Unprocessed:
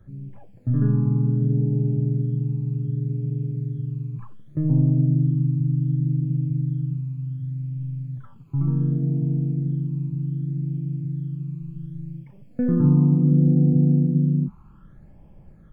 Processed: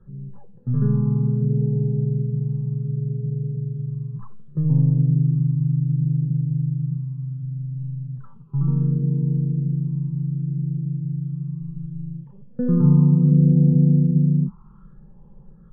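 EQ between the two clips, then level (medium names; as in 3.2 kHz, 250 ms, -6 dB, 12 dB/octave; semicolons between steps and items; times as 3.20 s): distance through air 460 m; static phaser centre 440 Hz, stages 8; +4.0 dB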